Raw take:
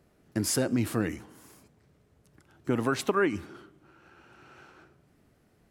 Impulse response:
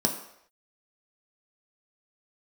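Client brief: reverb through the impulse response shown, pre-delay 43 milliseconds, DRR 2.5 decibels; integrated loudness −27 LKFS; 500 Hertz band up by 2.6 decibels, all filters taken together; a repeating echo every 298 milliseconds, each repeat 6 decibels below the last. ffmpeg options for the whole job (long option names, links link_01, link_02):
-filter_complex "[0:a]equalizer=frequency=500:width_type=o:gain=3.5,aecho=1:1:298|596|894|1192|1490|1788:0.501|0.251|0.125|0.0626|0.0313|0.0157,asplit=2[link_01][link_02];[1:a]atrim=start_sample=2205,adelay=43[link_03];[link_02][link_03]afir=irnorm=-1:irlink=0,volume=-12dB[link_04];[link_01][link_04]amix=inputs=2:normalize=0,volume=-4dB"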